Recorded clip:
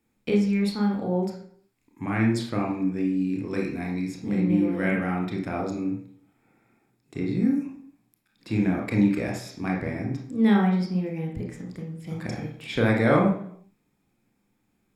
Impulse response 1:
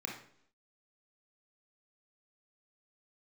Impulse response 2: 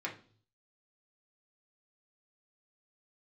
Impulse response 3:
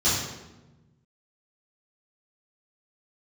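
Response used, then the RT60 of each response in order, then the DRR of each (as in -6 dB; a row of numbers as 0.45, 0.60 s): 1; 0.65, 0.45, 1.1 s; -1.0, -2.5, -12.0 dB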